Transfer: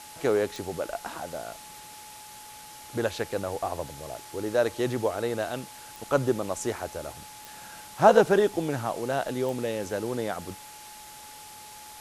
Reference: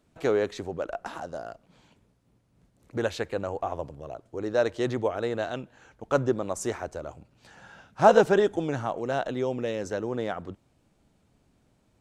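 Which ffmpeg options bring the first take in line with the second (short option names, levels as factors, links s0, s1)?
-af "adeclick=t=4,bandreject=f=850:w=30,afftdn=nr=20:nf=-46"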